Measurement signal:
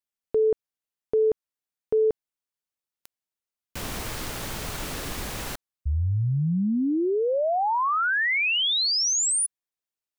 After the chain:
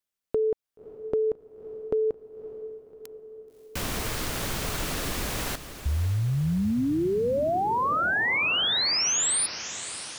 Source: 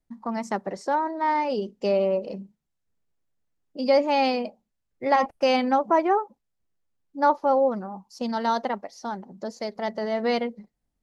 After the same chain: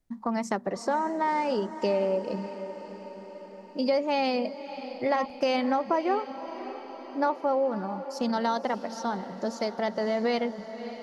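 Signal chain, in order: peaking EQ 850 Hz -2.5 dB 0.22 oct; compression 3:1, threshold -28 dBFS; on a send: echo that smears into a reverb 580 ms, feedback 59%, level -12.5 dB; on the sum: trim +3 dB

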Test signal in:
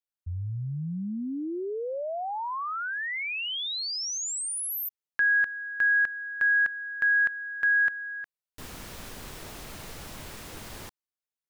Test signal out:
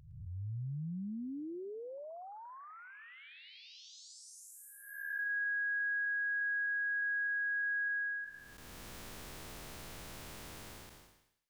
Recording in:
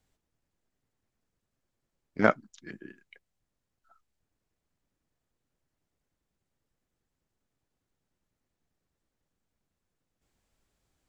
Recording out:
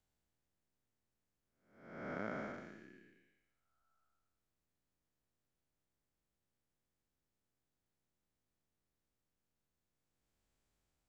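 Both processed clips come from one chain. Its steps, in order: spectral blur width 475 ms; compression, threshold -30 dBFS; feedback echo behind a high-pass 111 ms, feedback 42%, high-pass 1.5 kHz, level -13 dB; trim -5 dB

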